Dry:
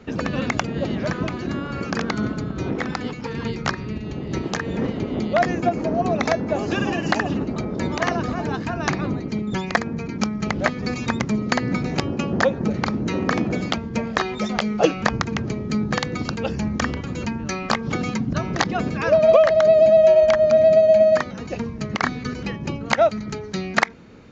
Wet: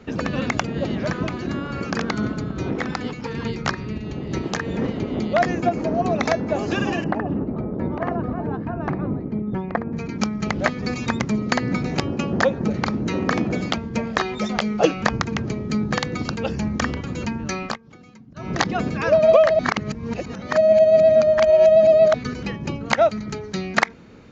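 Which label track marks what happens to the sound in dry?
7.040000	9.930000	Bessel low-pass 890 Hz
17.630000	18.510000	dip -22 dB, fades 0.15 s
19.590000	22.140000	reverse

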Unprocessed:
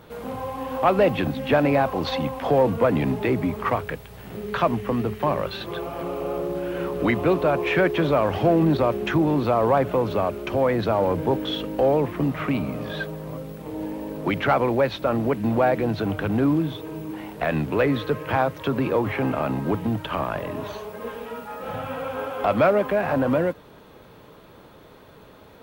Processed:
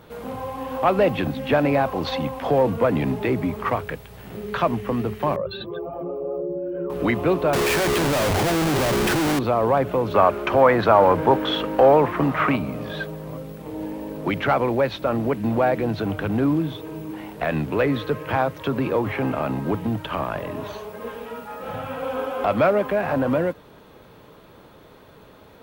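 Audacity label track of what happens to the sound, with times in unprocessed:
5.360000	6.900000	spectral contrast raised exponent 1.9
7.530000	9.390000	Schmitt trigger flips at -32.5 dBFS
10.140000	12.560000	bell 1200 Hz +11.5 dB 2.2 oct
22.020000	22.440000	comb 4 ms

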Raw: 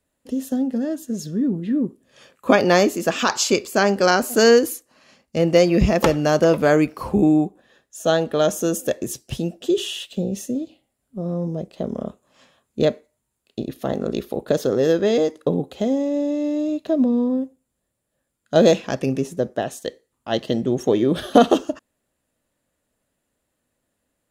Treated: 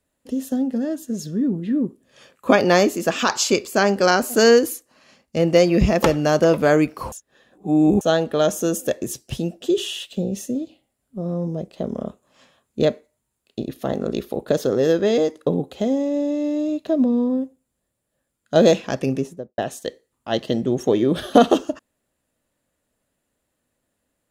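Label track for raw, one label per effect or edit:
7.120000	8.010000	reverse
19.120000	19.580000	studio fade out

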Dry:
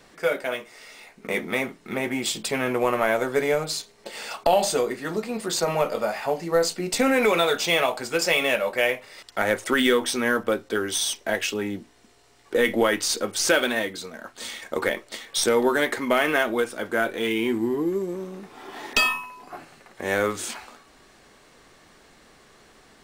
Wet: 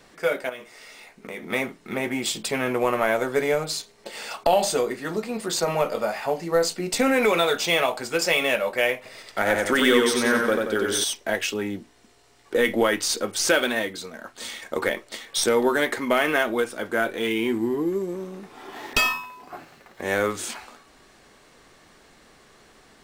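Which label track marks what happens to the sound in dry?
0.490000	1.500000	compressor 3:1, threshold -34 dBFS
8.960000	11.040000	warbling echo 91 ms, feedback 49%, depth 53 cents, level -3 dB
18.710000	20.020000	running maximum over 3 samples

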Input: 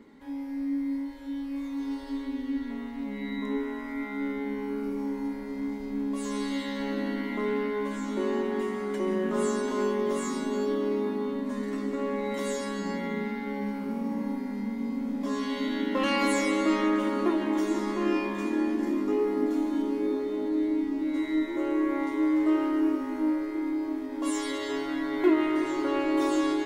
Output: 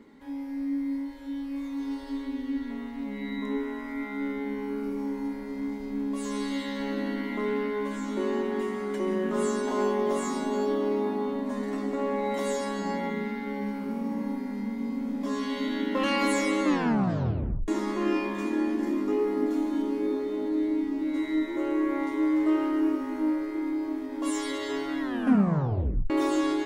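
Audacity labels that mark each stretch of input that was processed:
9.670000	13.100000	bell 740 Hz +9.5 dB 0.57 oct
16.630000	16.630000	tape stop 1.05 s
25.000000	25.000000	tape stop 1.10 s

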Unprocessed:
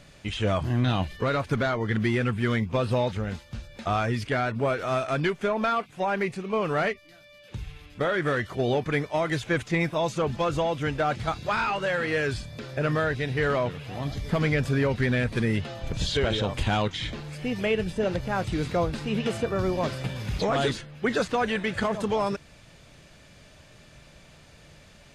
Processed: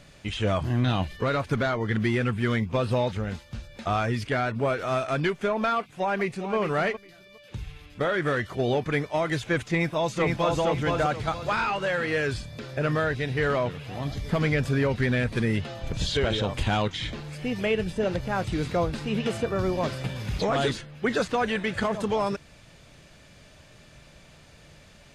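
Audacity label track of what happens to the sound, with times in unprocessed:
5.780000	6.550000	echo throw 0.41 s, feedback 15%, level -10 dB
9.690000	10.590000	echo throw 0.47 s, feedback 30%, level -2.5 dB

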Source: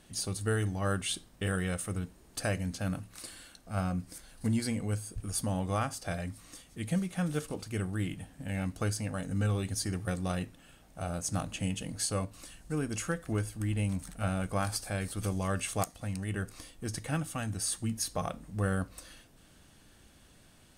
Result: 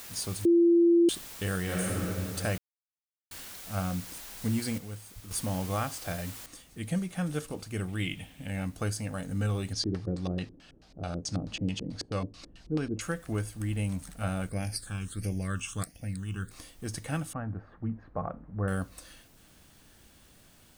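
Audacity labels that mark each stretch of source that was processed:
0.450000	1.090000	bleep 341 Hz -17.5 dBFS
1.620000	2.020000	reverb throw, RT60 2.4 s, DRR -4.5 dB
2.580000	3.310000	mute
4.780000	5.310000	gain -8.5 dB
6.460000	6.460000	noise floor step -45 dB -64 dB
7.880000	8.470000	band shelf 2700 Hz +10.5 dB 1 oct
9.730000	13.010000	LFO low-pass square 4.6 Hz 370–4700 Hz
14.490000	16.510000	phaser stages 8, 1.5 Hz, lowest notch 560–1200 Hz
17.330000	18.680000	LPF 1500 Hz 24 dB/oct

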